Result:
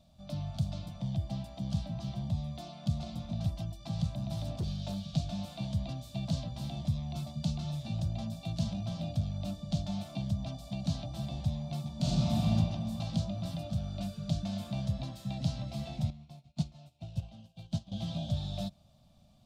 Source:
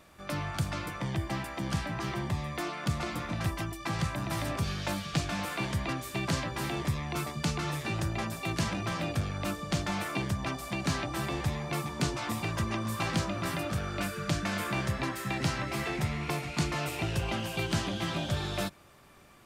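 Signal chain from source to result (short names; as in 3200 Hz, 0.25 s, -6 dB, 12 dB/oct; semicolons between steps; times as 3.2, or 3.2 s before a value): EQ curve 220 Hz 0 dB, 410 Hz -28 dB, 640 Hz -2 dB, 990 Hz -19 dB, 1900 Hz -28 dB, 3700 Hz -4 dB, 9800 Hz -16 dB; 4.36–5.11 hard clip -29 dBFS, distortion -27 dB; 11.96–12.55 reverb throw, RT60 1.9 s, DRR -7.5 dB; 16.1–17.92 upward expander 2.5:1, over -47 dBFS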